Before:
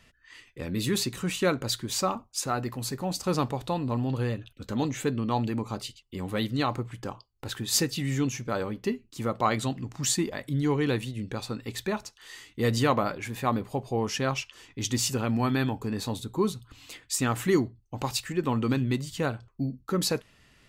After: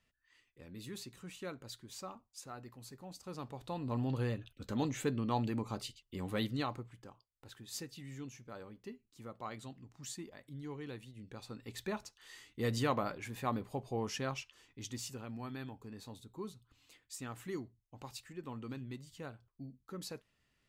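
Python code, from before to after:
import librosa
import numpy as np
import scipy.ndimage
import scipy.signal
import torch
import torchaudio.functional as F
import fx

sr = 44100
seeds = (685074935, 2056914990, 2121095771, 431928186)

y = fx.gain(x, sr, db=fx.line((3.34, -19.0), (4.0, -6.5), (6.46, -6.5), (7.11, -19.0), (11.03, -19.0), (11.9, -9.0), (14.1, -9.0), (15.26, -18.0)))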